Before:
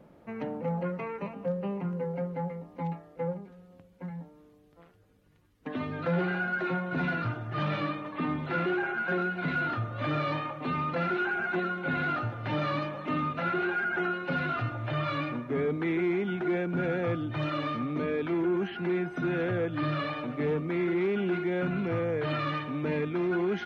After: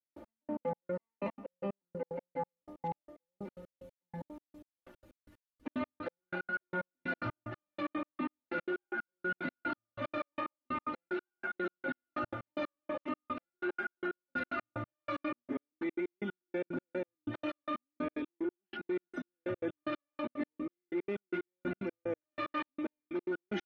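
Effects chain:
parametric band 430 Hz +4 dB 1.1 octaves
comb filter 3.4 ms, depth 92%
reversed playback
downward compressor 6 to 1, threshold −35 dBFS, peak gain reduction 16 dB
reversed playback
gate pattern "..x...x.x" 185 BPM −60 dB
level +2.5 dB

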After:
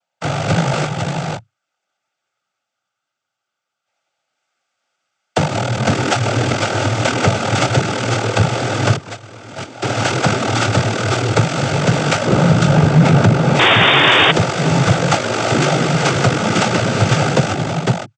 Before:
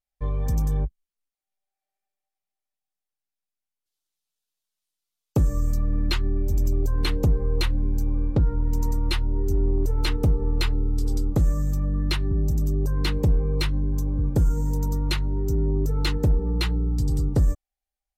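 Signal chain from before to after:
samples sorted by size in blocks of 64 samples
downward compressor 6 to 1, threshold −19 dBFS, peak gain reduction 4.5 dB
0:12.25–0:13.56: spectral tilt −2.5 dB per octave
on a send: single-tap delay 503 ms −4 dB
0:08.96–0:09.82: on the sum: noise gate −18 dBFS, range −18 dB
cochlear-implant simulation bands 16
0:13.59–0:14.32: sound drawn into the spectrogram noise 270–3,700 Hz −19 dBFS
boost into a limiter +15 dB
level −1 dB

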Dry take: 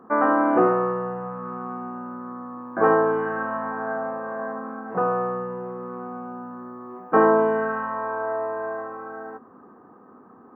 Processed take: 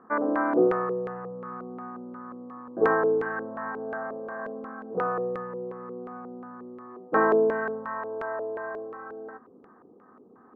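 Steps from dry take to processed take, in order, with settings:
auto-filter low-pass square 2.8 Hz 450–1,900 Hz
level −7 dB

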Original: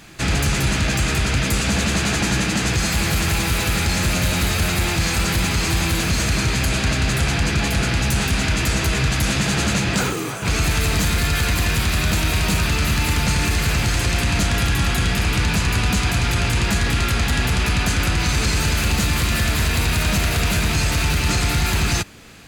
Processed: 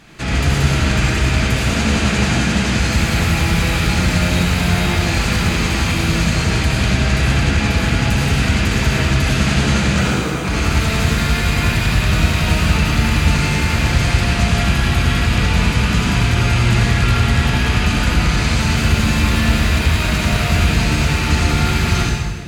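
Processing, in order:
low-pass filter 4,000 Hz 6 dB per octave
convolution reverb RT60 1.5 s, pre-delay 57 ms, DRR −3 dB
level −1 dB

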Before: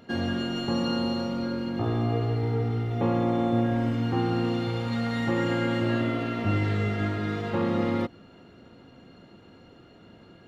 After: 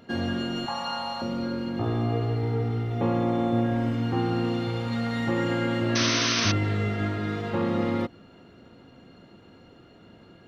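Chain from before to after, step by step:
0:00.66–0:01.22: low shelf with overshoot 550 Hz −13 dB, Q 3
0:05.95–0:06.52: sound drawn into the spectrogram noise 970–6,300 Hz −26 dBFS

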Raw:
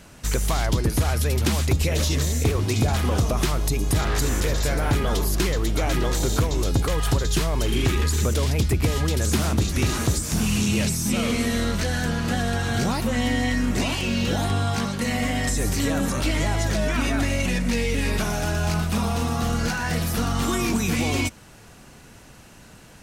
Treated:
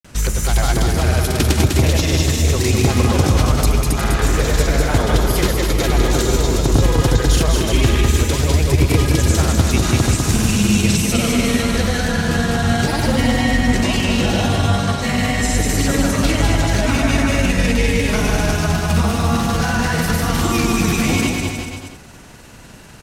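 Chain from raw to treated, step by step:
granular cloud, pitch spread up and down by 0 semitones
on a send: bouncing-ball delay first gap 200 ms, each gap 0.8×, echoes 5
on the sum: level +6 dB

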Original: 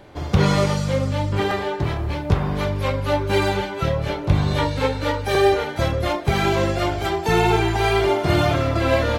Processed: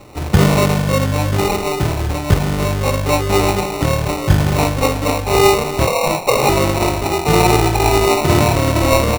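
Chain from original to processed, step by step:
far-end echo of a speakerphone 320 ms, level −12 dB
0:05.87–0:06.49: frequency shifter +420 Hz
decimation without filtering 27×
level +5 dB

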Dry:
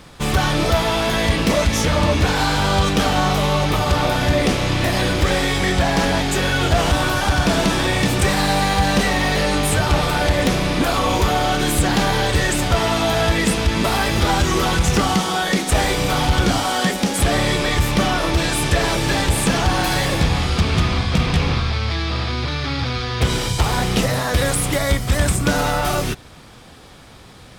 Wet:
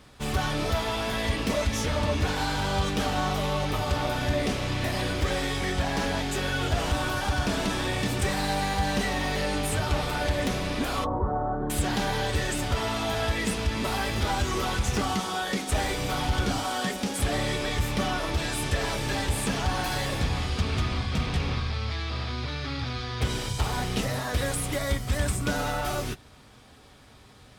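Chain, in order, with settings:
0:11.04–0:11.70: inverse Chebyshev low-pass filter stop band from 2,400 Hz, stop band 40 dB
notch comb filter 170 Hz
level −8.5 dB

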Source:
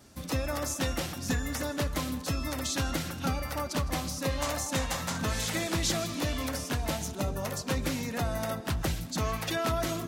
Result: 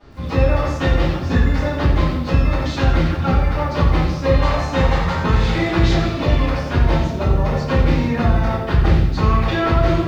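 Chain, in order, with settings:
high-frequency loss of the air 240 metres
rectangular room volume 59 cubic metres, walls mixed, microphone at 3.3 metres
feedback echo at a low word length 88 ms, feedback 35%, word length 8 bits, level −8.5 dB
level −1.5 dB

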